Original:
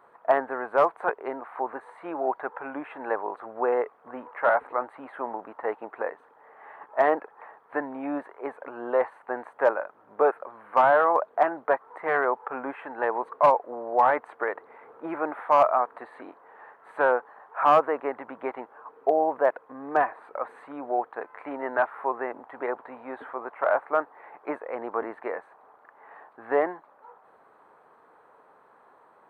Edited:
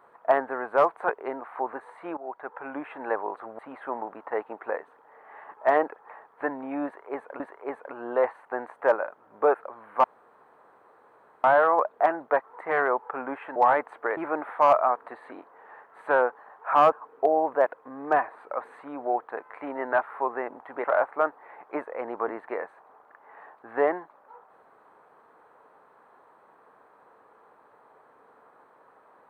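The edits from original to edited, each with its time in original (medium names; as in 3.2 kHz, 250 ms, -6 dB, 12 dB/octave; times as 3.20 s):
2.17–2.76 s: fade in, from -16.5 dB
3.59–4.91 s: delete
8.17–8.72 s: loop, 2 plays
10.81 s: insert room tone 1.40 s
12.93–13.93 s: delete
14.54–15.07 s: delete
17.82–18.76 s: delete
22.68–23.58 s: delete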